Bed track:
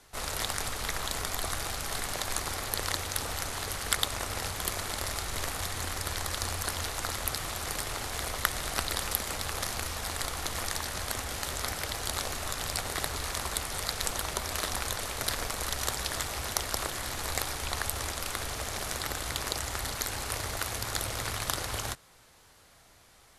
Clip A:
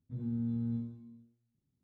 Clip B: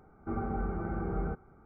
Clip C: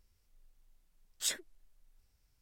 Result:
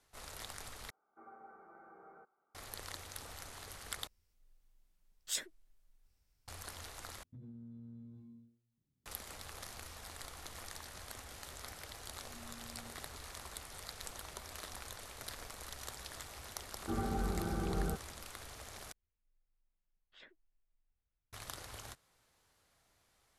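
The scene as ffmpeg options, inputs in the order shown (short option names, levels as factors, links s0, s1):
-filter_complex "[2:a]asplit=2[s0][s1];[3:a]asplit=2[s2][s3];[1:a]asplit=2[s4][s5];[0:a]volume=0.178[s6];[s0]highpass=670,lowpass=2100[s7];[s4]acompressor=threshold=0.00501:ratio=6:attack=3.2:release=140:knee=1:detection=peak[s8];[s5]highpass=f=1000:p=1[s9];[s3]lowpass=f=3000:w=0.5412,lowpass=f=3000:w=1.3066[s10];[s6]asplit=5[s11][s12][s13][s14][s15];[s11]atrim=end=0.904[s16];[s7]atrim=end=1.65,asetpts=PTS-STARTPTS,volume=0.2[s17];[s12]atrim=start=2.546:end=4.074[s18];[s2]atrim=end=2.41,asetpts=PTS-STARTPTS,volume=0.668[s19];[s13]atrim=start=6.476:end=7.234[s20];[s8]atrim=end=1.83,asetpts=PTS-STARTPTS,volume=0.708[s21];[s14]atrim=start=9.056:end=18.924[s22];[s10]atrim=end=2.41,asetpts=PTS-STARTPTS,volume=0.178[s23];[s15]atrim=start=21.326[s24];[s9]atrim=end=1.83,asetpts=PTS-STARTPTS,volume=0.398,afade=t=in:d=0.004:c=hsin,afade=t=out:st=1.826:d=0.004:c=hsin,adelay=12100[s25];[s1]atrim=end=1.65,asetpts=PTS-STARTPTS,volume=0.75,afade=t=in:d=0.004:c=hsin,afade=t=out:st=1.646:d=0.004:c=hsin,adelay=16610[s26];[s16][s17]acrossfade=d=0.004:c1=hsin:c2=hsin[s27];[s27][s18]acrossfade=d=0.004:c1=hsin:c2=hsin[s28];[s28][s19]acrossfade=d=0.004:c1=hsin:c2=hsin[s29];[s29][s20]acrossfade=d=0.004:c1=hsin:c2=hsin[s30];[s30][s21]acrossfade=d=0.004:c1=hsin:c2=hsin[s31];[s31][s22]acrossfade=d=0.004:c1=hsin:c2=hsin[s32];[s32][s23]acrossfade=d=0.004:c1=hsin:c2=hsin[s33];[s33][s24]acrossfade=d=0.004:c1=hsin:c2=hsin[s34];[s34][s25][s26]amix=inputs=3:normalize=0"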